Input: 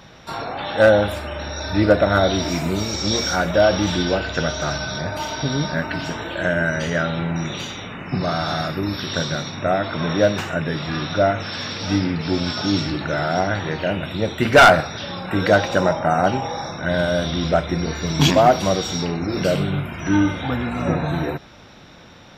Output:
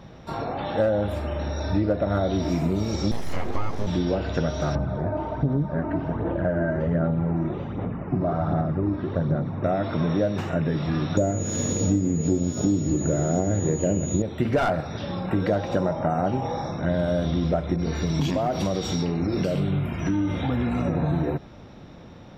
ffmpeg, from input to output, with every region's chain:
ffmpeg -i in.wav -filter_complex "[0:a]asettb=1/sr,asplit=3[link_01][link_02][link_03];[link_01]atrim=end=3.114[link_04];[link_02]atrim=start=3.11:end=3.87,asetpts=PTS-STARTPTS,afade=type=in:duration=0.004:curve=qsin,afade=type=out:start_time=0.756:duration=0.004:curve=qsin,asuperstop=centerf=2900:order=20:qfactor=3.4,aeval=exprs='abs(val(0))':channel_layout=same,acrossover=split=3300[link_05][link_06];[link_06]acompressor=threshold=-35dB:ratio=4:attack=1:release=60[link_07];[link_05][link_07]amix=inputs=2:normalize=0[link_08];[link_03]atrim=start=3.866[link_09];[link_04][link_08]acrossfade=duration=0.004:curve1=hsin:curve2=qsin[link_10];[link_10][link_09]acrossfade=duration=0.004:curve1=qsin:curve2=hsin,asettb=1/sr,asplit=3[link_11][link_12][link_13];[link_11]atrim=end=4.754[link_14];[link_12]atrim=start=4.75:end=9.64,asetpts=PTS-STARTPTS,afade=type=in:duration=0.004:curve=qsin,afade=type=out:start_time=4.886:duration=0.004:curve=qsin,lowpass=1300,aphaser=in_gain=1:out_gain=1:delay=3.2:decay=0.44:speed=1.3:type=sinusoidal[link_15];[link_13]atrim=start=9.636[link_16];[link_14][link_15]acrossfade=duration=0.004:curve1=hsin:curve2=qsin[link_17];[link_17][link_16]acrossfade=duration=0.004:curve1=qsin:curve2=hsin,asettb=1/sr,asplit=3[link_18][link_19][link_20];[link_18]atrim=end=11.174[link_21];[link_19]atrim=start=11.17:end=14.22,asetpts=PTS-STARTPTS,afade=type=in:duration=0.004:curve=qsin,afade=type=out:start_time=3.046:duration=0.004:curve=qsin,lowshelf=frequency=650:width_type=q:width=1.5:gain=8.5,aeval=exprs='sgn(val(0))*max(abs(val(0))-0.0237,0)':channel_layout=same,aeval=exprs='val(0)+0.126*sin(2*PI*6800*n/s)':channel_layout=same[link_22];[link_20]atrim=start=14.216[link_23];[link_21][link_22]acrossfade=duration=0.004:curve1=hsin:curve2=qsin[link_24];[link_24][link_23]acrossfade=duration=0.004:curve1=qsin:curve2=hsin,asettb=1/sr,asplit=3[link_25][link_26][link_27];[link_25]atrim=end=17.764[link_28];[link_26]atrim=start=17.76:end=20.97,asetpts=PTS-STARTPTS,afade=type=in:duration=0.004:curve=qsin,afade=type=out:start_time=3.206:duration=0.004:curve=qsin,acompressor=threshold=-21dB:ratio=3:attack=3.2:release=140:knee=1:detection=peak,adynamicequalizer=threshold=0.0112:dfrequency=1700:dqfactor=0.7:tfrequency=1700:tqfactor=0.7:attack=5:release=100:ratio=0.375:range=2.5:mode=boostabove:tftype=highshelf[link_29];[link_27]atrim=start=20.966[link_30];[link_28][link_29]acrossfade=duration=0.004:curve1=hsin:curve2=qsin[link_31];[link_31][link_30]acrossfade=duration=0.004:curve1=qsin:curve2=hsin,tiltshelf=frequency=970:gain=7,bandreject=frequency=1500:width=23,acompressor=threshold=-16dB:ratio=6,volume=-3.5dB" out.wav

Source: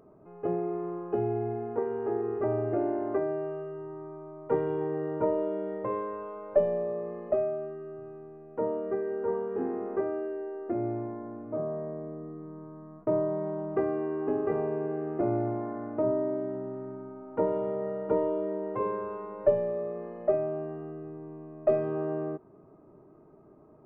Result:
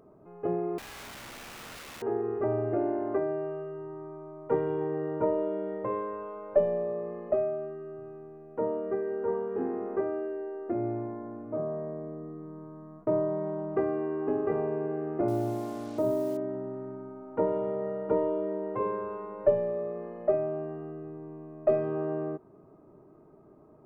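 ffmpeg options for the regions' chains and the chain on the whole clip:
ffmpeg -i in.wav -filter_complex "[0:a]asettb=1/sr,asplit=3[link_01][link_02][link_03];[link_01]atrim=end=0.784[link_04];[link_02]atrim=start=0.78:end=2.02,asetpts=PTS-STARTPTS,afade=type=in:duration=0.004:curve=qsin,afade=type=out:start_time=1.236:duration=0.004:curve=qsin,lowpass=frequency=1400:poles=1,acompressor=threshold=-35dB:ratio=6:attack=3.2:release=140:knee=1:detection=peak,aeval=exprs='(mod(100*val(0)+1,2)-1)/100':channel_layout=same[link_05];[link_03]atrim=start=2.016[link_06];[link_04][link_05]acrossfade=duration=0.004:curve1=hsin:curve2=qsin[link_07];[link_07][link_06]acrossfade=duration=0.004:curve1=qsin:curve2=hsin,asettb=1/sr,asplit=3[link_08][link_09][link_10];[link_08]atrim=end=15.284[link_11];[link_09]atrim=start=15.28:end=16.37,asetpts=PTS-STARTPTS,afade=type=in:duration=0.004:curve=qsin,afade=type=out:start_time=1.086:duration=0.004:curve=qsin,highshelf=frequency=2100:gain=-7.5,acrusher=bits=7:mix=0:aa=0.5[link_12];[link_10]atrim=start=16.366[link_13];[link_11][link_12]acrossfade=duration=0.004:curve1=hsin:curve2=qsin[link_14];[link_14][link_13]acrossfade=duration=0.004:curve1=qsin:curve2=hsin" out.wav

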